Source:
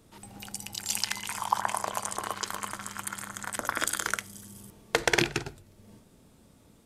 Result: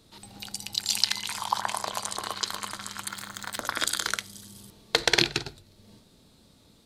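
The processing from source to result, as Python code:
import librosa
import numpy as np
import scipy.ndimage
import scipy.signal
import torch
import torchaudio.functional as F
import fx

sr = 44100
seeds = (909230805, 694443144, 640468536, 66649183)

y = fx.peak_eq(x, sr, hz=4100.0, db=13.5, octaves=0.64)
y = fx.resample_linear(y, sr, factor=2, at=(3.09, 3.61))
y = y * librosa.db_to_amplitude(-1.0)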